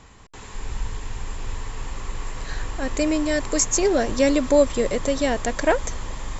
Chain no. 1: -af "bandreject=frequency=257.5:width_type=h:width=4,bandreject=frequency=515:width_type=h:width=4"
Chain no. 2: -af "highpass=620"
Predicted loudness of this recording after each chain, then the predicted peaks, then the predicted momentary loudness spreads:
−22.5, −25.5 LKFS; −6.0, −8.0 dBFS; 16, 19 LU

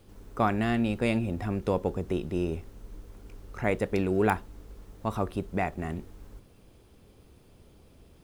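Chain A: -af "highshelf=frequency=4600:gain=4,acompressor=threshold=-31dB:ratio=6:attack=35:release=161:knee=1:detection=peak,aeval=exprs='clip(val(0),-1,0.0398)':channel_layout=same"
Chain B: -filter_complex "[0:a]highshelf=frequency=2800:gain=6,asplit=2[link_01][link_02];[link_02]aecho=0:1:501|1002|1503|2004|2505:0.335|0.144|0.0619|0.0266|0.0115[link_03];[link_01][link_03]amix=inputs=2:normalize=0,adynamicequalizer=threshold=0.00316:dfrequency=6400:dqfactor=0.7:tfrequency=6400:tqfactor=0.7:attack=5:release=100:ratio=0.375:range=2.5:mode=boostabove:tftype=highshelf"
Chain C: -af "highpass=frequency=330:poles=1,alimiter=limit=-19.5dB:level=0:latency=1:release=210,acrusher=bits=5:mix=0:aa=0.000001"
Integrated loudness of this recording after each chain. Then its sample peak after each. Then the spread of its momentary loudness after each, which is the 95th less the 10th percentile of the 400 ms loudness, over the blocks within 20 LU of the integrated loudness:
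−35.0, −29.5, −34.5 LKFS; −17.0, −9.0, −20.5 dBFS; 17, 17, 9 LU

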